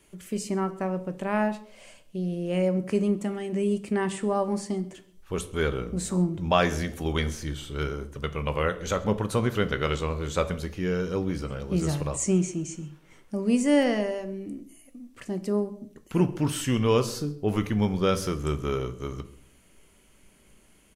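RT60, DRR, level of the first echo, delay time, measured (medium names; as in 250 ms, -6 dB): 0.55 s, 9.5 dB, -23.0 dB, 133 ms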